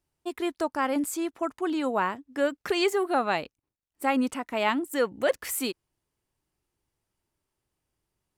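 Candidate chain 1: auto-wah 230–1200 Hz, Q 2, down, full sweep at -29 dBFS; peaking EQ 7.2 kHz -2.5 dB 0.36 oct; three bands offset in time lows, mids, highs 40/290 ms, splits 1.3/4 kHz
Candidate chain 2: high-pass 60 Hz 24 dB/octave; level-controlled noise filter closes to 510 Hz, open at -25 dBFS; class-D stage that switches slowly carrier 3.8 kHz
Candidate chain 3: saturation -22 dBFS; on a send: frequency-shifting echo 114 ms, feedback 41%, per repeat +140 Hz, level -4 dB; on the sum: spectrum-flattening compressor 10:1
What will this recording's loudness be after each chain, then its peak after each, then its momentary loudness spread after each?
-35.5 LUFS, -28.5 LUFS, -34.5 LUFS; -19.5 dBFS, -12.5 dBFS, -16.5 dBFS; 9 LU, 6 LU, 5 LU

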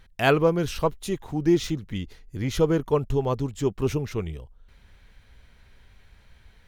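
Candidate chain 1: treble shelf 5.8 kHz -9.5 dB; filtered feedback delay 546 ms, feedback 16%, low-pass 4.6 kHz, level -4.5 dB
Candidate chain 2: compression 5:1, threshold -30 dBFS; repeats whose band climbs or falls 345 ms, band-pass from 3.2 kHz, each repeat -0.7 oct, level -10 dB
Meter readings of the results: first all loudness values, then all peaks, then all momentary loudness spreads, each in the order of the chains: -25.0 LUFS, -35.0 LUFS; -7.0 dBFS, -18.5 dBFS; 10 LU, 21 LU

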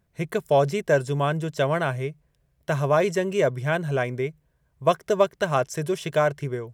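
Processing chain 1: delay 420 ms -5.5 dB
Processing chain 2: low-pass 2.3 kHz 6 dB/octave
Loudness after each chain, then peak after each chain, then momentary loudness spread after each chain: -23.5 LUFS, -25.0 LUFS; -7.0 dBFS, -7.0 dBFS; 8 LU, 8 LU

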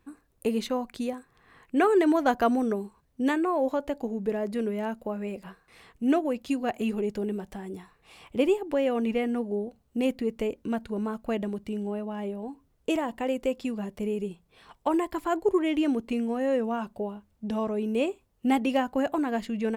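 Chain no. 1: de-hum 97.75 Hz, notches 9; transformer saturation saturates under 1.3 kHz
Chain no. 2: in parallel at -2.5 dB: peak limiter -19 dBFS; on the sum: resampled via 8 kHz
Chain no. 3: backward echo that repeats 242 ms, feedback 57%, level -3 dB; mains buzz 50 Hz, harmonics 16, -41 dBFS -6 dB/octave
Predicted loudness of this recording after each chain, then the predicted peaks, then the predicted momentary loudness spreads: -31.0 LUFS, -24.5 LUFS, -26.5 LUFS; -12.5 dBFS, -8.0 dBFS, -8.0 dBFS; 10 LU, 9 LU, 9 LU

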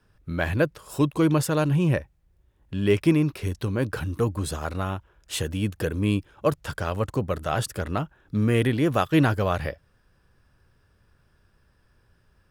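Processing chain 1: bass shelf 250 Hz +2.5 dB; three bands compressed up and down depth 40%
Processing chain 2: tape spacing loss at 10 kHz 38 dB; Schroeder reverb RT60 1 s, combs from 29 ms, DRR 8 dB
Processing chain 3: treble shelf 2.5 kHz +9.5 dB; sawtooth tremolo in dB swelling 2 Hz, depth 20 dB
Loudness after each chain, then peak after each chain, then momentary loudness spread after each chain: -24.5 LUFS, -26.5 LUFS, -30.5 LUFS; -7.5 dBFS, -9.5 dBFS, -7.0 dBFS; 8 LU, 10 LU, 11 LU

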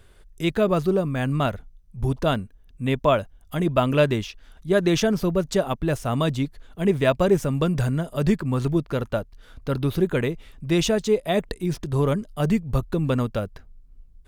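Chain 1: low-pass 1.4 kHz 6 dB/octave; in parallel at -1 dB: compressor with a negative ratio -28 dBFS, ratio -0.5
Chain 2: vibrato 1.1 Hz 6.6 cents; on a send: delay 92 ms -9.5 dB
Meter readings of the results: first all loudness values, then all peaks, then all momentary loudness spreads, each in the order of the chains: -22.5 LUFS, -23.5 LUFS; -5.5 dBFS, -5.0 dBFS; 7 LU, 9 LU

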